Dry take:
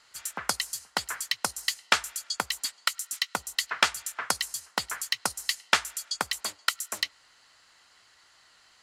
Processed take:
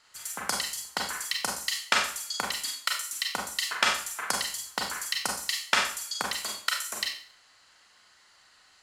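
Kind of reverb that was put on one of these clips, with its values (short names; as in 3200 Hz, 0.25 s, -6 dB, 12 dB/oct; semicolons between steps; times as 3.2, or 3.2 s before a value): Schroeder reverb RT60 0.47 s, combs from 30 ms, DRR -0.5 dB; gain -3 dB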